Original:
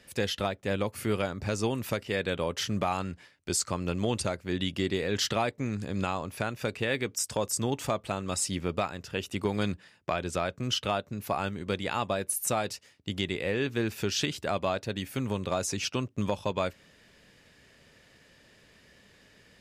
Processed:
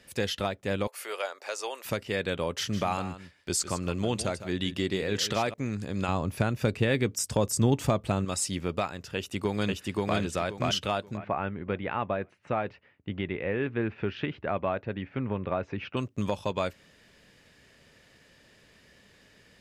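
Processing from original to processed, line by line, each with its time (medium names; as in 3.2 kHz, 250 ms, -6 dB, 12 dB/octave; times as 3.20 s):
0.87–1.85 s: inverse Chebyshev high-pass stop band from 150 Hz, stop band 60 dB
2.53–5.54 s: delay 156 ms -12.5 dB
6.08–8.25 s: bass shelf 340 Hz +10.5 dB
9.15–10.18 s: echo throw 530 ms, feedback 25%, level -0.5 dB
11.17–15.97 s: low-pass 2.4 kHz 24 dB/octave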